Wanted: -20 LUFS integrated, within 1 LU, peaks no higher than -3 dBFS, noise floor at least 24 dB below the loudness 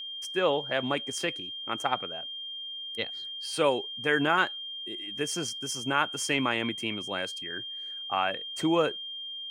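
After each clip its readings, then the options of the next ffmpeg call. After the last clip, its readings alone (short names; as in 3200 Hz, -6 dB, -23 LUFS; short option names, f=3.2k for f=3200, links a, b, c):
steady tone 3200 Hz; tone level -36 dBFS; loudness -30.0 LUFS; peak -10.0 dBFS; loudness target -20.0 LUFS
-> -af "bandreject=f=3.2k:w=30"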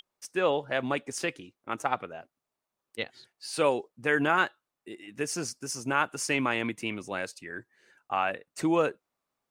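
steady tone none; loudness -30.0 LUFS; peak -10.0 dBFS; loudness target -20.0 LUFS
-> -af "volume=10dB,alimiter=limit=-3dB:level=0:latency=1"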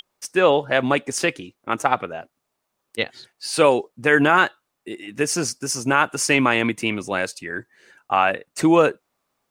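loudness -20.5 LUFS; peak -3.0 dBFS; noise floor -77 dBFS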